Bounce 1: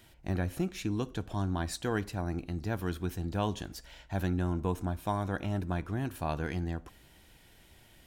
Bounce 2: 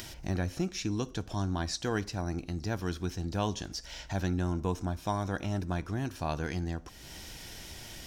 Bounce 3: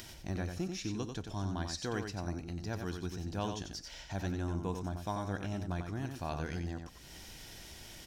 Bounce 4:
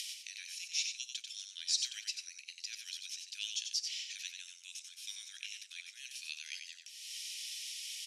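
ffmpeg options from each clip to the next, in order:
-filter_complex "[0:a]acrossover=split=6700[a][b];[b]acompressor=threshold=-57dB:ratio=4:attack=1:release=60[c];[a][c]amix=inputs=2:normalize=0,equalizer=f=5.6k:t=o:w=0.66:g=12,acompressor=mode=upward:threshold=-33dB:ratio=2.5"
-af "aecho=1:1:92:0.501,volume=-5.5dB"
-af "asuperpass=centerf=5700:order=12:qfactor=0.61,volume=9.5dB"

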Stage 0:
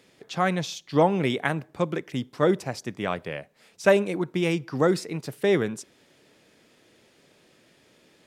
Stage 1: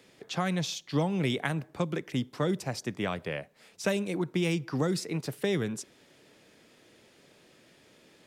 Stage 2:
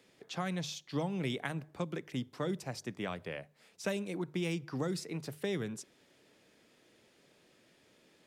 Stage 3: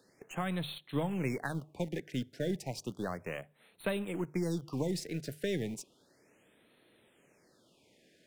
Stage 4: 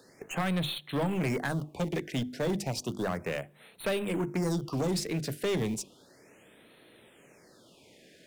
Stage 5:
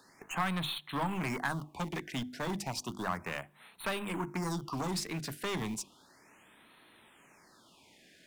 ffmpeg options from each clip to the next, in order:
-filter_complex "[0:a]acrossover=split=200|3000[a][b][c];[b]acompressor=threshold=-29dB:ratio=6[d];[a][d][c]amix=inputs=3:normalize=0"
-af "bandreject=f=50:t=h:w=6,bandreject=f=100:t=h:w=6,bandreject=f=150:t=h:w=6,volume=-6.5dB"
-filter_complex "[0:a]asplit=2[a][b];[b]acrusher=bits=4:dc=4:mix=0:aa=0.000001,volume=-9dB[c];[a][c]amix=inputs=2:normalize=0,afftfilt=real='re*(1-between(b*sr/1024,980*pow(6200/980,0.5+0.5*sin(2*PI*0.33*pts/sr))/1.41,980*pow(6200/980,0.5+0.5*sin(2*PI*0.33*pts/sr))*1.41))':imag='im*(1-between(b*sr/1024,980*pow(6200/980,0.5+0.5*sin(2*PI*0.33*pts/sr))/1.41,980*pow(6200/980,0.5+0.5*sin(2*PI*0.33*pts/sr))*1.41))':win_size=1024:overlap=0.75"
-af "bandreject=f=50:t=h:w=6,bandreject=f=100:t=h:w=6,bandreject=f=150:t=h:w=6,bandreject=f=200:t=h:w=6,bandreject=f=250:t=h:w=6,bandreject=f=300:t=h:w=6,bandreject=f=350:t=h:w=6,asoftclip=type=tanh:threshold=-33.5dB,volume=9dB"
-af "equalizer=f=125:t=o:w=1:g=-5,equalizer=f=500:t=o:w=1:g=-11,equalizer=f=1k:t=o:w=1:g=9,volume=-2dB"

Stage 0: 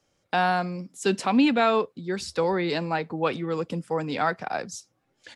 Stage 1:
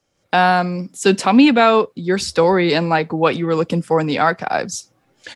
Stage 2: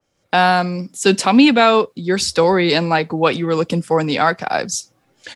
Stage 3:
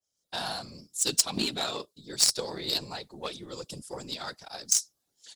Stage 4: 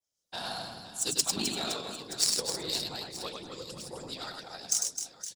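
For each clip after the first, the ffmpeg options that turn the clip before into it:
-af "dynaudnorm=f=140:g=3:m=11.5dB"
-af "adynamicequalizer=threshold=0.0282:dfrequency=2800:dqfactor=0.7:tfrequency=2800:tqfactor=0.7:attack=5:release=100:ratio=0.375:range=2.5:mode=boostabove:tftype=highshelf"
-af "afftfilt=real='hypot(re,im)*cos(2*PI*random(0))':imag='hypot(re,im)*sin(2*PI*random(1))':win_size=512:overlap=0.75,aexciter=amount=8.7:drive=2.9:freq=3.4k,aeval=exprs='1.68*(cos(1*acos(clip(val(0)/1.68,-1,1)))-cos(1*PI/2))+0.335*(cos(3*acos(clip(val(0)/1.68,-1,1)))-cos(3*PI/2))+0.0376*(cos(7*acos(clip(val(0)/1.68,-1,1)))-cos(7*PI/2))':c=same,volume=-6.5dB"
-af "aecho=1:1:100|260|516|925.6|1581:0.631|0.398|0.251|0.158|0.1,volume=-4.5dB"

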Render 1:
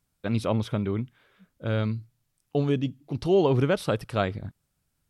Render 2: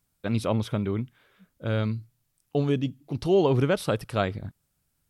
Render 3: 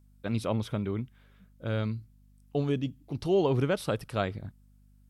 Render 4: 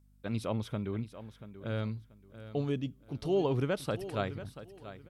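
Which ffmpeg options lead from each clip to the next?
-af "highshelf=f=9.7k:g=6.5"
-af "aeval=exprs='val(0)+0.002*(sin(2*PI*50*n/s)+sin(2*PI*2*50*n/s)/2+sin(2*PI*3*50*n/s)/3+sin(2*PI*4*50*n/s)/4+sin(2*PI*5*50*n/s)/5)':c=same,volume=-4dB"
-af "aecho=1:1:684|1368|2052:0.211|0.0528|0.0132,volume=-4dB"

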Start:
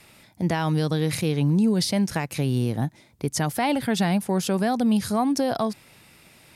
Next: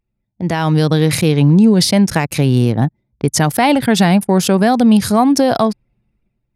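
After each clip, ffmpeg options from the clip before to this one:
-af "anlmdn=2.51,dynaudnorm=f=160:g=7:m=12dB"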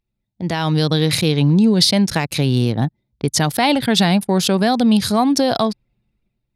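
-af "equalizer=f=3.9k:t=o:w=0.78:g=9,volume=-4dB"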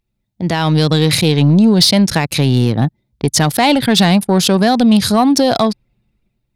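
-af "acontrast=58,volume=-1dB"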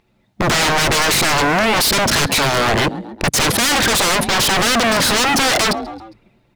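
-filter_complex "[0:a]asplit=2[a][b];[b]highpass=f=720:p=1,volume=23dB,asoftclip=type=tanh:threshold=-1.5dB[c];[a][c]amix=inputs=2:normalize=0,lowpass=f=1.1k:p=1,volume=-6dB,asplit=4[d][e][f][g];[e]adelay=135,afreqshift=36,volume=-23.5dB[h];[f]adelay=270,afreqshift=72,volume=-29.5dB[i];[g]adelay=405,afreqshift=108,volume=-35.5dB[j];[d][h][i][j]amix=inputs=4:normalize=0,aeval=exprs='0.119*(abs(mod(val(0)/0.119+3,4)-2)-1)':c=same,volume=8dB"

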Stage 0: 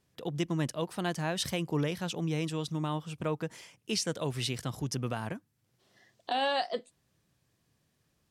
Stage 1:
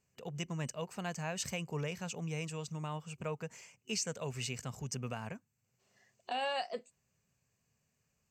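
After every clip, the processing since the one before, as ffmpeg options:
-af "superequalizer=6b=0.316:12b=1.58:13b=0.447:15b=2.24:16b=0.282,volume=-6dB"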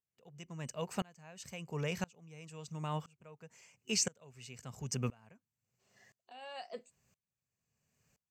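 -af "aeval=exprs='val(0)*pow(10,-30*if(lt(mod(-0.98*n/s,1),2*abs(-0.98)/1000),1-mod(-0.98*n/s,1)/(2*abs(-0.98)/1000),(mod(-0.98*n/s,1)-2*abs(-0.98)/1000)/(1-2*abs(-0.98)/1000))/20)':c=same,volume=7dB"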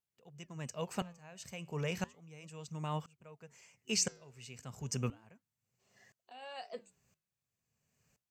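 -af "flanger=delay=0.3:depth=9.7:regen=-90:speed=0.34:shape=sinusoidal,volume=4.5dB"

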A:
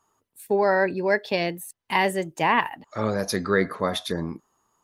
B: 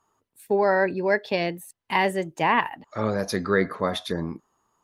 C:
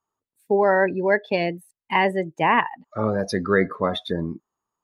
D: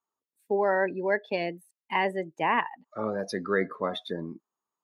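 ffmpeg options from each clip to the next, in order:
-af "highshelf=f=5.7k:g=-6.5"
-af "afftdn=nr=16:nf=-32,volume=2.5dB"
-af "highpass=190,volume=-6.5dB"

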